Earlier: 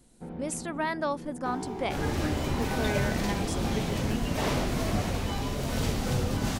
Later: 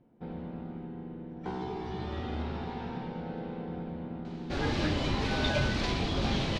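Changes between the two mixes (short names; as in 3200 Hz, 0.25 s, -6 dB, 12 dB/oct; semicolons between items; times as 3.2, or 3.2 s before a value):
speech: muted; second sound: entry +2.60 s; master: add synth low-pass 4100 Hz, resonance Q 1.8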